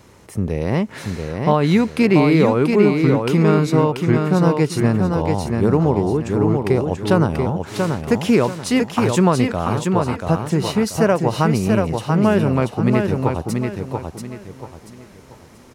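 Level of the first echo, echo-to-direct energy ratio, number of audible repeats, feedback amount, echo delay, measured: -4.5 dB, -4.0 dB, 4, 32%, 0.685 s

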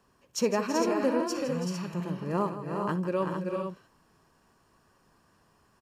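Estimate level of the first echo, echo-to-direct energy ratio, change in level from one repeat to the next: -15.0 dB, -2.0 dB, no steady repeat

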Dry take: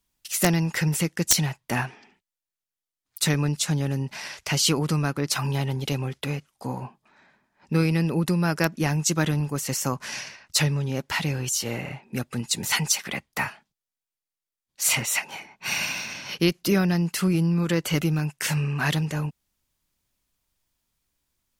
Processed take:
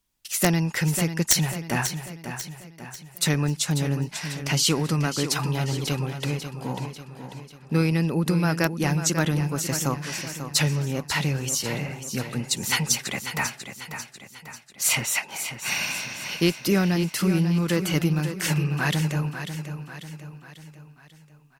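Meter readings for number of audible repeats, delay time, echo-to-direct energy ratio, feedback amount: 5, 0.543 s, -8.5 dB, 49%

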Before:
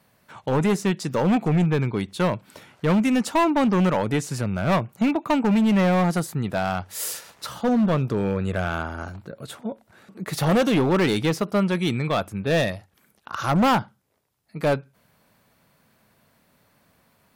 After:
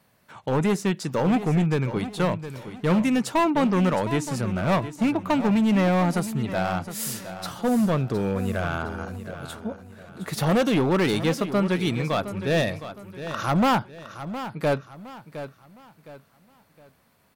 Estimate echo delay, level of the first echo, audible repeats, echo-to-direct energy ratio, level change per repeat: 0.713 s, -12.0 dB, 3, -11.5 dB, -9.0 dB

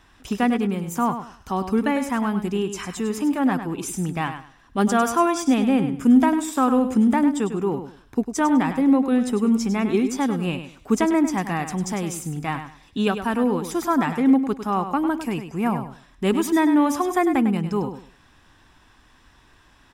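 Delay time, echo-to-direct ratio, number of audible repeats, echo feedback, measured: 0.101 s, -9.5 dB, 2, 23%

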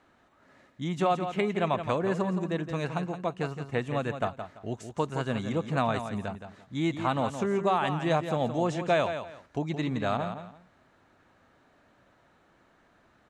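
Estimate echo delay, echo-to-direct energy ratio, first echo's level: 0.169 s, -9.0 dB, -9.0 dB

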